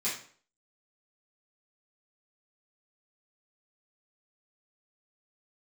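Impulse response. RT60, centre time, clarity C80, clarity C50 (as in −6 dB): 0.50 s, 36 ms, 10.5 dB, 5.0 dB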